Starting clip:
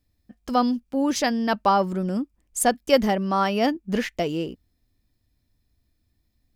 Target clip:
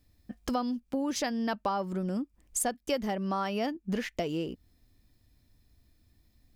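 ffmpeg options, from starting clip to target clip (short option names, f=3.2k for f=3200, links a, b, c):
-af "acompressor=threshold=-36dB:ratio=4,volume=5dB"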